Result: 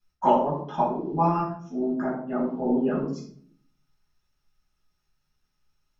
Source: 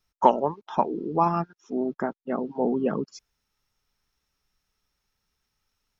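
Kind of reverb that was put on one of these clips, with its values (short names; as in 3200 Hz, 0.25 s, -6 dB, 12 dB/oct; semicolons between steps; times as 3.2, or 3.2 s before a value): shoebox room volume 730 m³, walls furnished, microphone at 8.4 m; gain -12 dB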